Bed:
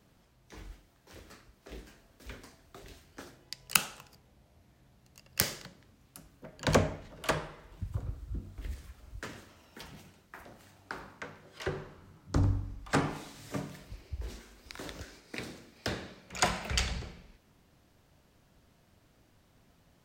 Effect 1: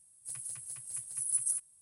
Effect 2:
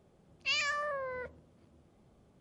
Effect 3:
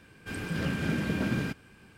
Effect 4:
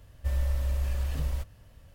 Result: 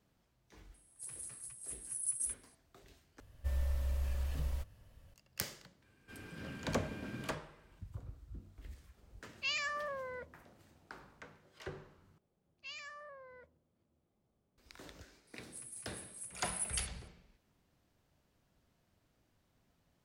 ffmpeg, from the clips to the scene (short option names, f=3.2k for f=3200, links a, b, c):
-filter_complex "[1:a]asplit=2[a][b];[2:a]asplit=2[c][d];[0:a]volume=-10.5dB[e];[a]aresample=32000,aresample=44100[f];[3:a]equalizer=f=170:w=5.2:g=-6.5[g];[e]asplit=3[h][i][j];[h]atrim=end=3.204[k];[4:a]atrim=end=1.94,asetpts=PTS-STARTPTS,volume=-7dB[l];[i]atrim=start=5.136:end=12.184[m];[d]atrim=end=2.4,asetpts=PTS-STARTPTS,volume=-16dB[n];[j]atrim=start=14.576[o];[f]atrim=end=1.81,asetpts=PTS-STARTPTS,volume=-5.5dB,afade=t=in:d=0.004:c=hsin,afade=t=out:st=1.806:d=0.004:c=hsin,adelay=740[p];[g]atrim=end=1.97,asetpts=PTS-STARTPTS,volume=-14.5dB,afade=t=in:d=0.004:c=hsin,afade=t=out:st=1.966:d=0.004:c=hsin,adelay=5820[q];[c]atrim=end=2.4,asetpts=PTS-STARTPTS,volume=-4.5dB,afade=t=in:d=0.004:c=hsin,afade=t=out:st=2.396:d=0.004:c=hsin,adelay=8970[r];[b]atrim=end=1.81,asetpts=PTS-STARTPTS,volume=-8dB,afade=t=in:d=0.004:c=hsin,afade=t=out:st=1.806:d=0.004:c=hsin,adelay=15270[s];[k][l]acrossfade=d=0.004:c1=hsin:c2=hsin[t];[t][m]acrossfade=d=0.004:c1=hsin:c2=hsin[u];[u][n]acrossfade=d=0.004:c1=hsin:c2=hsin[v];[v][o]acrossfade=d=0.004:c1=hsin:c2=hsin[w];[w][p][q][r][s]amix=inputs=5:normalize=0"